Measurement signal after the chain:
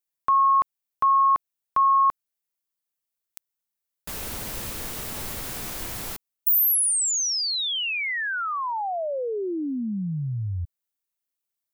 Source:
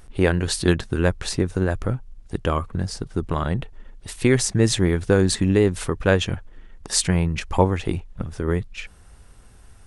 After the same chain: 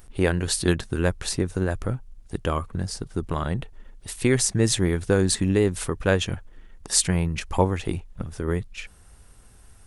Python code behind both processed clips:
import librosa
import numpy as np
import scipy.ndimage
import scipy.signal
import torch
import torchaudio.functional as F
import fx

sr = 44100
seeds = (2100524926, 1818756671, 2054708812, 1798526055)

y = fx.high_shelf(x, sr, hz=9300.0, db=11.0)
y = y * 10.0 ** (-3.0 / 20.0)